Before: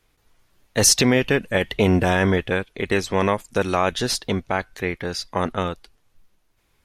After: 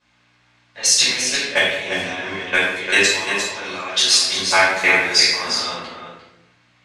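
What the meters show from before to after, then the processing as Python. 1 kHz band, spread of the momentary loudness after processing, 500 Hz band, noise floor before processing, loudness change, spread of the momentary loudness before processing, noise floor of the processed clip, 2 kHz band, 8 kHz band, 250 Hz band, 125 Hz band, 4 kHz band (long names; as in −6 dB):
+1.0 dB, 11 LU, −3.5 dB, −65 dBFS, +5.0 dB, 11 LU, −59 dBFS, +9.0 dB, +4.5 dB, −9.5 dB, −15.0 dB, +10.5 dB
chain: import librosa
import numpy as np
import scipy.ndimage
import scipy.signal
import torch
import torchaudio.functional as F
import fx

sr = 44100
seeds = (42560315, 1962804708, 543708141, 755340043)

p1 = fx.rider(x, sr, range_db=5, speed_s=0.5)
p2 = fx.quant_dither(p1, sr, seeds[0], bits=8, dither='triangular')
p3 = fx.dmg_buzz(p2, sr, base_hz=60.0, harmonics=5, level_db=-45.0, tilt_db=-5, odd_only=False)
p4 = fx.weighting(p3, sr, curve='ITU-R 468')
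p5 = fx.level_steps(p4, sr, step_db=18)
p6 = fx.high_shelf(p5, sr, hz=7500.0, db=-3.5)
p7 = p6 + fx.echo_single(p6, sr, ms=349, db=-7.5, dry=0)
p8 = fx.room_shoebox(p7, sr, seeds[1], volume_m3=310.0, walls='mixed', distance_m=5.2)
p9 = fx.env_lowpass(p8, sr, base_hz=1600.0, full_db=-12.0)
y = F.gain(torch.from_numpy(p9), -4.5).numpy()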